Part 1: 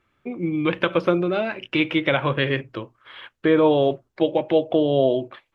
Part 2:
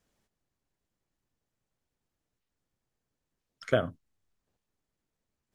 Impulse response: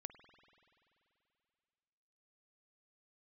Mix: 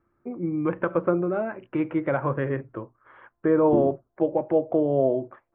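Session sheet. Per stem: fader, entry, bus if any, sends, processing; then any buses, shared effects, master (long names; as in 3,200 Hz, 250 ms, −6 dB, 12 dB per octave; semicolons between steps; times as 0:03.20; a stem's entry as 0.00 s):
−3.0 dB, 0.00 s, no send, low-pass filter 1,500 Hz 24 dB per octave
+0.5 dB, 0.00 s, no send, samples sorted by size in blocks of 128 samples; brickwall limiter −15.5 dBFS, peak gain reduction 5 dB; low-pass on a step sequencer 2.2 Hz 290–1,500 Hz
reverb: not used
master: no processing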